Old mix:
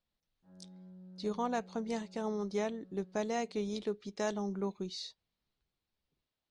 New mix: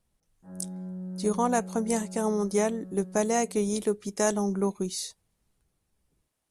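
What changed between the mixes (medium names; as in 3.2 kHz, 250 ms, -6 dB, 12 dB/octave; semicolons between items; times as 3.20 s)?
background +6.5 dB; master: remove four-pole ladder low-pass 4.9 kHz, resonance 45%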